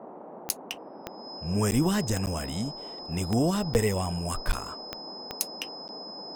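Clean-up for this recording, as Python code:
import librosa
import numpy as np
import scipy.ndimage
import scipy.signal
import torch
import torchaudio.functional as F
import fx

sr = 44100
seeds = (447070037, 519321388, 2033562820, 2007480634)

y = fx.fix_declick_ar(x, sr, threshold=10.0)
y = fx.notch(y, sr, hz=5100.0, q=30.0)
y = fx.fix_interpolate(y, sr, at_s=(1.71, 2.26, 3.74, 4.52, 5.88), length_ms=9.7)
y = fx.noise_reduce(y, sr, print_start_s=0.0, print_end_s=0.5, reduce_db=30.0)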